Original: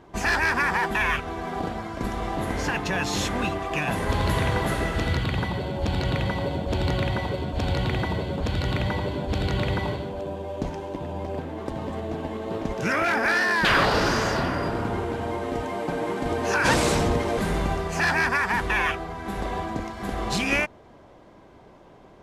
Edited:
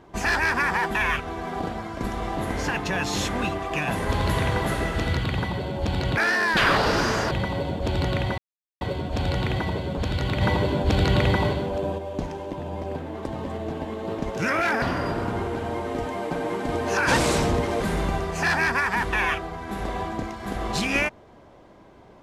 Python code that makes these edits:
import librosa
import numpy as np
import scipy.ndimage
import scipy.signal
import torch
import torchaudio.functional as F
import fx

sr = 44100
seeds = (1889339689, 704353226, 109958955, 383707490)

y = fx.edit(x, sr, fx.insert_silence(at_s=7.24, length_s=0.43),
    fx.clip_gain(start_s=8.84, length_s=1.57, db=5.0),
    fx.move(start_s=13.25, length_s=1.14, to_s=6.17), tone=tone)